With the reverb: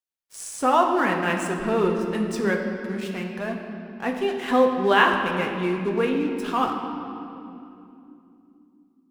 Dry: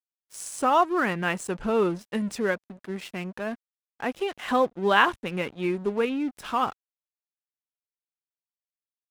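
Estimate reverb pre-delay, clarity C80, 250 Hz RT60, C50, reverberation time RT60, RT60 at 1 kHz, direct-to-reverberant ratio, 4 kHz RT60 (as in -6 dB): 4 ms, 5.5 dB, 4.6 s, 4.5 dB, 2.9 s, 2.5 s, 1.0 dB, 1.9 s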